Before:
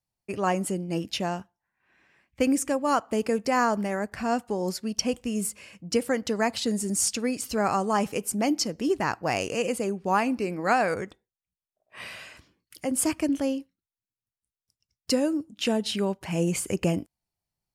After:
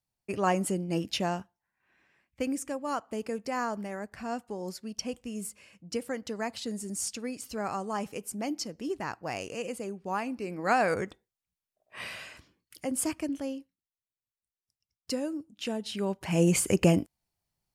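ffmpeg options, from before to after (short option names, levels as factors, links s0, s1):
-af "volume=8.91,afade=t=out:st=1.31:d=1.19:silence=0.421697,afade=t=in:st=10.38:d=0.65:silence=0.354813,afade=t=out:st=12.01:d=1.34:silence=0.375837,afade=t=in:st=15.91:d=0.6:silence=0.281838"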